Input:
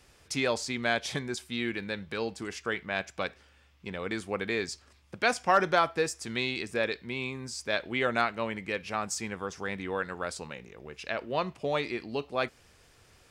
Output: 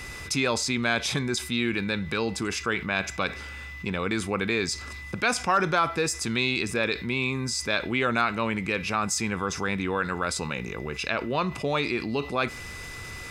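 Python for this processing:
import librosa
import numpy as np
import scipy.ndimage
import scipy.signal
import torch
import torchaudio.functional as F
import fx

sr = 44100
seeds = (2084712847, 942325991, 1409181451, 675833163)

y = x + 0.36 * np.pad(x, (int(0.8 * sr / 1000.0), 0))[:len(x)]
y = y + 10.0 ** (-58.0 / 20.0) * np.sin(2.0 * np.pi * 2000.0 * np.arange(len(y)) / sr)
y = fx.env_flatten(y, sr, amount_pct=50)
y = y * 10.0 ** (-1.0 / 20.0)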